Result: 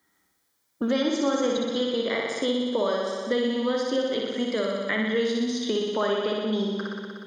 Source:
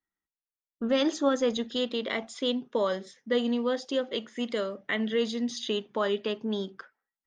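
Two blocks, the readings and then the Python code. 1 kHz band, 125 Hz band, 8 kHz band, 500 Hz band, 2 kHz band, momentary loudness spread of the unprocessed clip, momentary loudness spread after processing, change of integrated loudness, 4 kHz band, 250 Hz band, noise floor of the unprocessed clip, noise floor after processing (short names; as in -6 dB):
+3.5 dB, n/a, +3.5 dB, +3.5 dB, +4.0 dB, 7 LU, 3 LU, +3.5 dB, +2.5 dB, +3.5 dB, under -85 dBFS, -72 dBFS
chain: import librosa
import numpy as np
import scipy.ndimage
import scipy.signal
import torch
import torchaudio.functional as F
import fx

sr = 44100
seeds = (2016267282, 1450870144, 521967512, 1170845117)

y = scipy.signal.sosfilt(scipy.signal.butter(2, 77.0, 'highpass', fs=sr, output='sos'), x)
y = fx.notch(y, sr, hz=2700.0, q=5.2)
y = fx.room_flutter(y, sr, wall_m=10.4, rt60_s=1.3)
y = fx.band_squash(y, sr, depth_pct=70)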